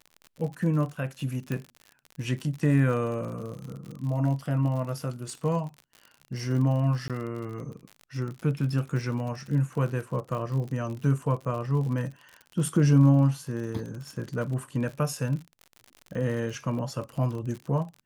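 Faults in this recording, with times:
crackle 55 per s -35 dBFS
1.52 s: pop -18 dBFS
7.08–7.10 s: dropout 17 ms

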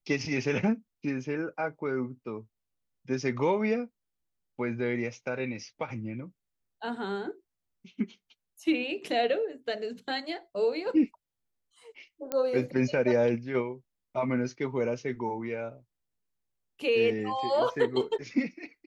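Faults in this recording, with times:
12.32 s: pop -16 dBFS

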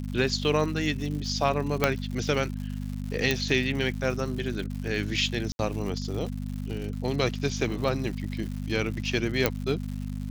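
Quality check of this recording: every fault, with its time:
crackle 190 per s -35 dBFS
hum 50 Hz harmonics 5 -33 dBFS
1.84 s: pop -6 dBFS
3.31 s: pop -10 dBFS
5.52–5.59 s: dropout 71 ms
9.46 s: pop -6 dBFS

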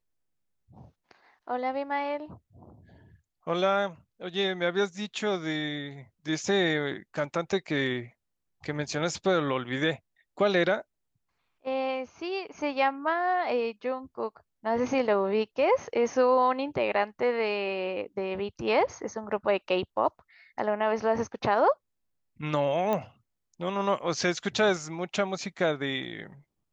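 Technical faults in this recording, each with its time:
22.93 s: pop -16 dBFS

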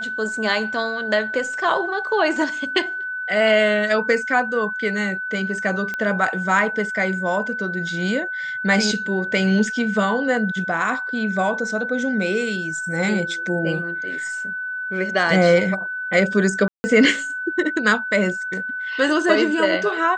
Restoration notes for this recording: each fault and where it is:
whine 1.5 kHz -25 dBFS
5.94 s: pop -14 dBFS
16.68–16.84 s: dropout 160 ms

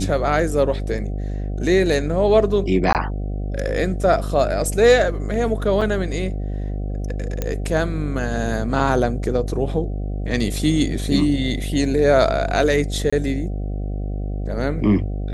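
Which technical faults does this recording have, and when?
buzz 50 Hz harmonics 15 -25 dBFS
2.93–2.95 s: dropout 18 ms
5.81–5.82 s: dropout 5 ms
7.42 s: pop -9 dBFS
13.10–13.12 s: dropout 25 ms

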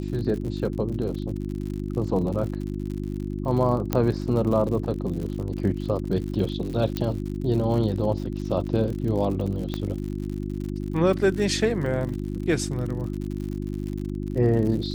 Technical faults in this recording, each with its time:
crackle 77 per s -32 dBFS
hum 50 Hz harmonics 7 -30 dBFS
3.93 s: pop -9 dBFS
6.97 s: pop -13 dBFS
9.74 s: pop -15 dBFS
12.09 s: dropout 3.7 ms

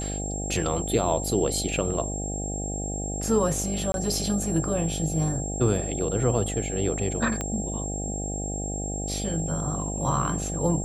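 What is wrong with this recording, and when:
buzz 50 Hz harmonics 16 -32 dBFS
whine 7.5 kHz -33 dBFS
3.92–3.94 s: dropout 22 ms
7.41 s: pop -15 dBFS

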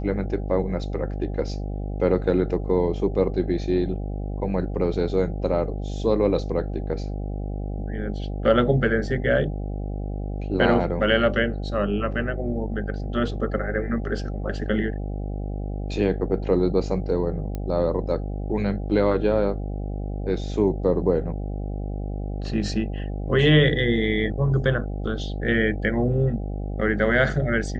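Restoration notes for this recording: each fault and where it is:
buzz 50 Hz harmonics 16 -29 dBFS
17.55 s: pop -18 dBFS

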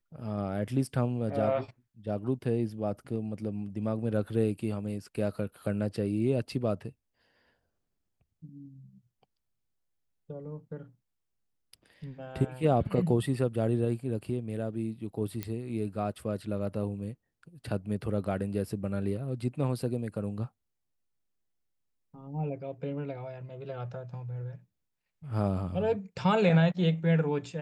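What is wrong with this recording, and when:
15.43 s: pop -19 dBFS

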